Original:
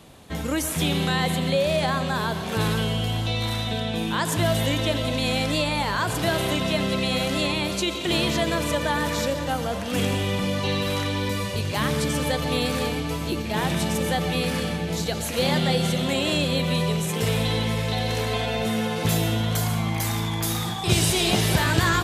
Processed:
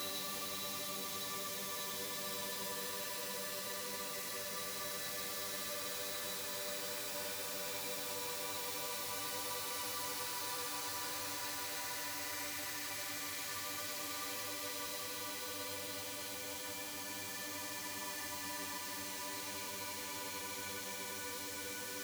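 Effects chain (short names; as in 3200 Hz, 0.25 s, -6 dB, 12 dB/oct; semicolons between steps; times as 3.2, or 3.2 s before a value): median filter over 15 samples; differentiator; Paulstretch 46×, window 0.10 s, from 10.76; gain +3 dB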